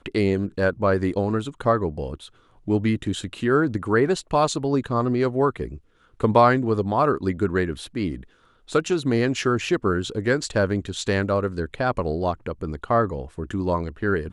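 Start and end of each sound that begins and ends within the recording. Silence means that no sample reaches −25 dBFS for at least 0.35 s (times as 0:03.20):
0:02.68–0:05.66
0:06.21–0:08.15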